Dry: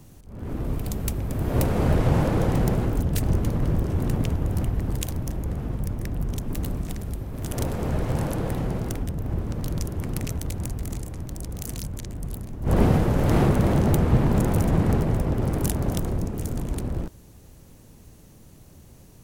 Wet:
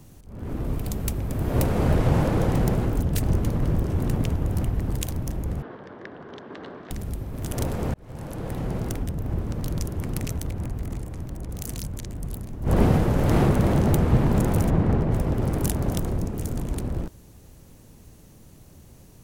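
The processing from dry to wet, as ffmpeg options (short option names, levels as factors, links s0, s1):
-filter_complex "[0:a]asettb=1/sr,asplit=3[s0][s1][s2];[s0]atrim=end=5.624[s3];[s1]atrim=start=5.62:end=6.91,asetpts=PTS-STARTPTS,afade=t=in:d=0.004:c=qsin,afade=t=out:st=1.286:d=0.004:c=qsin,highpass=400,equalizer=f=410:t=q:w=4:g=4,equalizer=f=1100:t=q:w=4:g=3,equalizer=f=1600:t=q:w=4:g=7,equalizer=f=2500:t=q:w=4:g=-6,lowpass=f=3700:w=0.5412,lowpass=f=3700:w=1.3066[s4];[s2]atrim=start=6.906[s5];[s3][s4]acrossfade=d=0.004:c1=hsin:c2=qsin[s6];[s6][s5]acrossfade=d=0.004:c1=qsin:c2=hsin,asettb=1/sr,asplit=3[s7][s8][s9];[s7]atrim=end=10.474[s10];[s8]atrim=start=10.47:end=11.49,asetpts=PTS-STARTPTS,afade=t=in:d=0.004:c=qsin,afade=t=out:st=1.016:d=0.004:c=qsin,acrossover=split=2900[s11][s12];[s12]acompressor=threshold=0.00562:ratio=4:attack=1:release=60[s13];[s11][s13]amix=inputs=2:normalize=0[s14];[s9]atrim=start=11.486[s15];[s10][s14]acrossfade=d=0.004:c1=hsin:c2=qsin[s16];[s16][s15]acrossfade=d=0.004:c1=qsin:c2=hsin,asettb=1/sr,asplit=3[s17][s18][s19];[s17]atrim=end=14.704[s20];[s18]atrim=start=14.7:end=15.12,asetpts=PTS-STARTPTS,afade=t=in:d=0.004:c=qsin,afade=t=out:st=0.416:d=0.004:c=qsin,aemphasis=mode=reproduction:type=75kf[s21];[s19]atrim=start=15.116[s22];[s20][s21]acrossfade=d=0.004:c1=hsin:c2=qsin[s23];[s23][s22]acrossfade=d=0.004:c1=qsin:c2=hsin,asplit=2[s24][s25];[s24]atrim=end=7.94,asetpts=PTS-STARTPTS,afade=t=out:st=7.936:d=0.004:c=hsin[s26];[s25]atrim=start=7.94,asetpts=PTS-STARTPTS,afade=t=in:d=0.88[s27];[s26][s27]concat=n=2:v=0:a=1"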